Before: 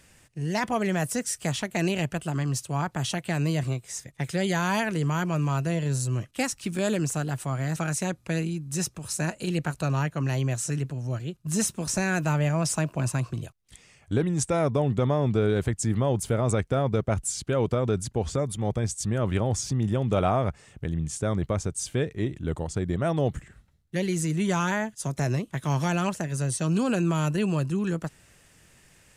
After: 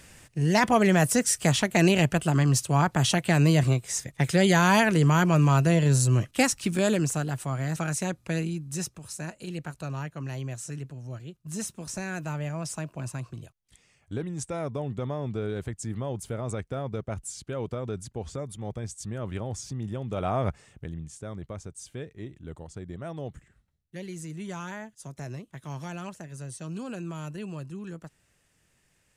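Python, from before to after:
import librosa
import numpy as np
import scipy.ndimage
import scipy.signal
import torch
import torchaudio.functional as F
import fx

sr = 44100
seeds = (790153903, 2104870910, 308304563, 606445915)

y = fx.gain(x, sr, db=fx.line((6.35, 5.5), (7.35, -1.0), (8.57, -1.0), (9.19, -8.0), (20.15, -8.0), (20.48, 0.0), (21.14, -11.5)))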